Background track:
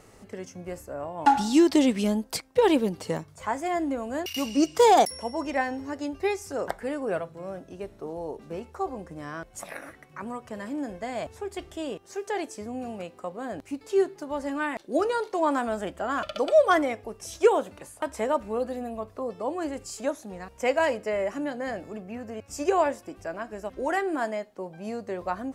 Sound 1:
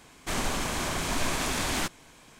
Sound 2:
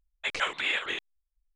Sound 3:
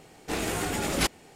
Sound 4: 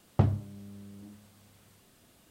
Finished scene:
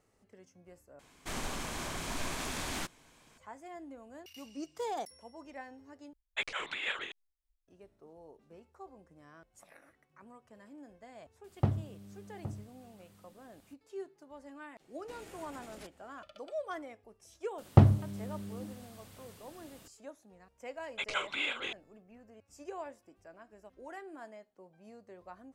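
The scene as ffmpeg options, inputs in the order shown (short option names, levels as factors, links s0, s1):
-filter_complex "[2:a]asplit=2[s0][s1];[4:a]asplit=2[s2][s3];[0:a]volume=0.106[s4];[s0]tremolo=f=3.7:d=0.66[s5];[s2]asplit=2[s6][s7];[s7]adelay=816.3,volume=0.251,highshelf=f=4000:g=-18.4[s8];[s6][s8]amix=inputs=2:normalize=0[s9];[3:a]acompressor=threshold=0.0251:ratio=6:attack=3.2:release=140:knee=1:detection=peak[s10];[s3]acontrast=29[s11];[s1]asuperstop=centerf=1800:order=4:qfactor=5.7[s12];[s4]asplit=3[s13][s14][s15];[s13]atrim=end=0.994[s16];[1:a]atrim=end=2.39,asetpts=PTS-STARTPTS,volume=0.376[s17];[s14]atrim=start=3.376:end=6.134[s18];[s5]atrim=end=1.55,asetpts=PTS-STARTPTS,volume=0.75[s19];[s15]atrim=start=7.676[s20];[s9]atrim=end=2.3,asetpts=PTS-STARTPTS,volume=0.562,afade=t=in:d=0.004:c=hsin,afade=t=out:st=2.296:d=0.004:c=hsin,adelay=11440[s21];[s10]atrim=end=1.35,asetpts=PTS-STARTPTS,volume=0.158,afade=t=in:d=0.004:c=hsin,afade=t=out:st=1.346:d=0.004:c=hsin,adelay=14800[s22];[s11]atrim=end=2.3,asetpts=PTS-STARTPTS,afade=t=in:d=0.004:c=hsin,afade=t=out:st=2.296:d=0.004:c=hsin,adelay=17580[s23];[s12]atrim=end=1.55,asetpts=PTS-STARTPTS,volume=0.562,afade=t=in:d=0.004:c=hsin,afade=t=out:st=1.546:d=0.004:c=hsin,adelay=20740[s24];[s16][s17]acrossfade=d=0.004:c1=hsin:c2=hsin[s25];[s25][s18]acrossfade=d=0.004:c1=hsin:c2=hsin[s26];[s26][s19]acrossfade=d=0.004:c1=hsin:c2=hsin[s27];[s27][s20]acrossfade=d=0.004:c1=hsin:c2=hsin[s28];[s28][s21][s22][s23][s24]amix=inputs=5:normalize=0"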